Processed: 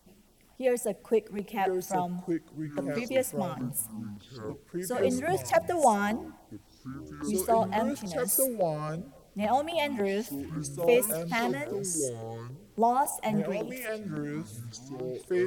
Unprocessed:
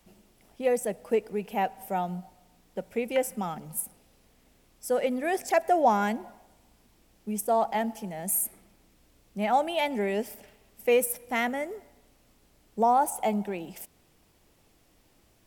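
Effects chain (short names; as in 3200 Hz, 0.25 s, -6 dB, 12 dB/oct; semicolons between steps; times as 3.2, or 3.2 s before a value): echoes that change speed 0.788 s, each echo -5 st, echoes 3, each echo -6 dB; LFO notch saw down 3.6 Hz 320–2800 Hz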